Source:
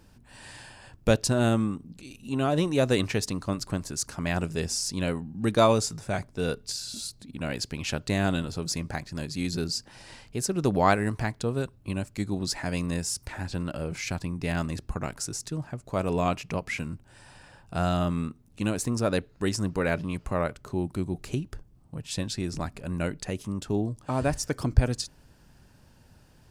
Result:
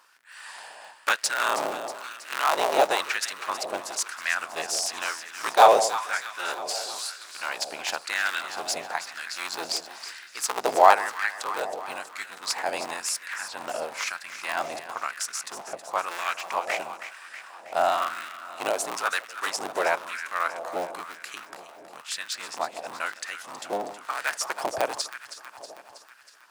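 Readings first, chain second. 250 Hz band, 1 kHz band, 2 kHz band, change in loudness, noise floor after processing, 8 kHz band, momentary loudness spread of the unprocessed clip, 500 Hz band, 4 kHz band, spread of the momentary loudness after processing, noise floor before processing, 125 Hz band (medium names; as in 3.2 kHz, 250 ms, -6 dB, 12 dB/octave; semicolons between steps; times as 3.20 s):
-16.5 dB, +8.5 dB, +7.0 dB, +1.5 dB, -49 dBFS, +3.0 dB, 11 LU, +1.0 dB, +3.5 dB, 15 LU, -57 dBFS, under -25 dB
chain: cycle switcher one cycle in 3, inverted; echo whose repeats swap between lows and highs 160 ms, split 830 Hz, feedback 78%, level -9.5 dB; LFO high-pass sine 1 Hz 660–1600 Hz; trim +2 dB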